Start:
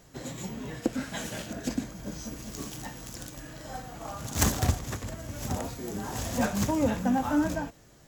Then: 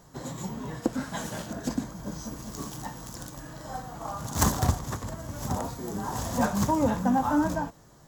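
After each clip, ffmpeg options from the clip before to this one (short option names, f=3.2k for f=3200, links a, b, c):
-af "equalizer=f=160:t=o:w=0.67:g=4,equalizer=f=1k:t=o:w=0.67:g=8,equalizer=f=2.5k:t=o:w=0.67:g=-7"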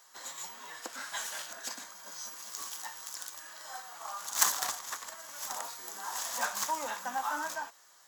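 -af "highpass=1.4k,volume=2.5dB"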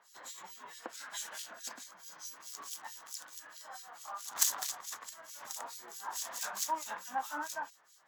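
-filter_complex "[0:a]acrossover=split=2500[a][b];[a]aeval=exprs='val(0)*(1-1/2+1/2*cos(2*PI*4.6*n/s))':c=same[c];[b]aeval=exprs='val(0)*(1-1/2-1/2*cos(2*PI*4.6*n/s))':c=same[d];[c][d]amix=inputs=2:normalize=0"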